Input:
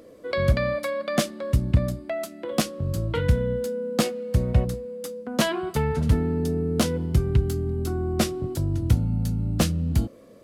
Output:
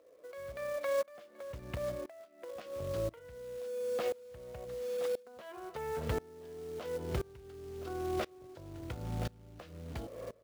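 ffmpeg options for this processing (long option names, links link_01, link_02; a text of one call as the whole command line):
ffmpeg -i in.wav -af "lowshelf=frequency=330:width_type=q:width=1.5:gain=-12.5,aecho=1:1:1020:0.0708,alimiter=limit=-20.5dB:level=0:latency=1:release=143,acompressor=threshold=-41dB:ratio=3,lowpass=2700,acontrast=32,acrusher=bits=4:mode=log:mix=0:aa=0.000001,aeval=exprs='val(0)*pow(10,-25*if(lt(mod(-0.97*n/s,1),2*abs(-0.97)/1000),1-mod(-0.97*n/s,1)/(2*abs(-0.97)/1000),(mod(-0.97*n/s,1)-2*abs(-0.97)/1000)/(1-2*abs(-0.97)/1000))/20)':channel_layout=same,volume=4dB" out.wav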